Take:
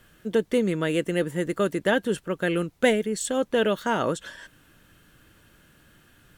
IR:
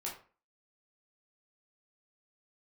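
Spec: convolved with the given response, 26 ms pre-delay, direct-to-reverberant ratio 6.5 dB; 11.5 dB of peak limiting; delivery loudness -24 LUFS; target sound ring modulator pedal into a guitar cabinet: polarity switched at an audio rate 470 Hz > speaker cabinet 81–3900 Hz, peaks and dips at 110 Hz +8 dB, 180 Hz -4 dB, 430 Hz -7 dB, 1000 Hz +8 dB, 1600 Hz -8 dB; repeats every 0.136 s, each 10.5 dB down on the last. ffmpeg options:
-filter_complex "[0:a]alimiter=limit=-19dB:level=0:latency=1,aecho=1:1:136|272|408:0.299|0.0896|0.0269,asplit=2[a][b];[1:a]atrim=start_sample=2205,adelay=26[c];[b][c]afir=irnorm=-1:irlink=0,volume=-7dB[d];[a][d]amix=inputs=2:normalize=0,aeval=exprs='val(0)*sgn(sin(2*PI*470*n/s))':c=same,highpass=81,equalizer=f=110:t=q:w=4:g=8,equalizer=f=180:t=q:w=4:g=-4,equalizer=f=430:t=q:w=4:g=-7,equalizer=f=1k:t=q:w=4:g=8,equalizer=f=1.6k:t=q:w=4:g=-8,lowpass=f=3.9k:w=0.5412,lowpass=f=3.9k:w=1.3066,volume=2.5dB"

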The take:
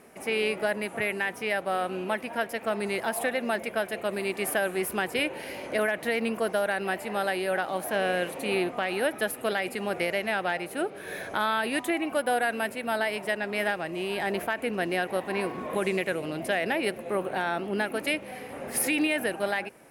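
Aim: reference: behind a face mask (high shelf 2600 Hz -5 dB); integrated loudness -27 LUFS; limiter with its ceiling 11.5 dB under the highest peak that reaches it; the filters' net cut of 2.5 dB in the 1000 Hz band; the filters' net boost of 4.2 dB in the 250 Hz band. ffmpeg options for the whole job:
-af "equalizer=f=250:t=o:g=6,equalizer=f=1k:t=o:g=-3.5,alimiter=level_in=1dB:limit=-24dB:level=0:latency=1,volume=-1dB,highshelf=f=2.6k:g=-5,volume=7.5dB"

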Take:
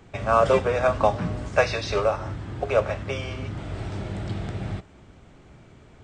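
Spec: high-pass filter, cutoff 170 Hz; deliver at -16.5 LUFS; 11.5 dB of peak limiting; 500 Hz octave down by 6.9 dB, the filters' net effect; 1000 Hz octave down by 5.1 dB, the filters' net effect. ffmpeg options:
-af "highpass=170,equalizer=f=500:t=o:g=-7,equalizer=f=1k:t=o:g=-4.5,volume=18dB,alimiter=limit=-4dB:level=0:latency=1"

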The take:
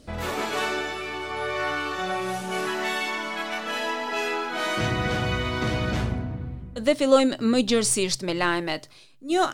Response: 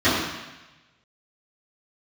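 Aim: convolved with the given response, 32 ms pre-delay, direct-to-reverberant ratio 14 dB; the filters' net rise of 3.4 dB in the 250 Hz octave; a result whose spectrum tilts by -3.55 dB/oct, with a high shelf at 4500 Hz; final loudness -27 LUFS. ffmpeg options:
-filter_complex "[0:a]equalizer=f=250:t=o:g=4,highshelf=f=4.5k:g=7.5,asplit=2[a][b];[1:a]atrim=start_sample=2205,adelay=32[c];[b][c]afir=irnorm=-1:irlink=0,volume=-35.5dB[d];[a][d]amix=inputs=2:normalize=0,volume=-4dB"

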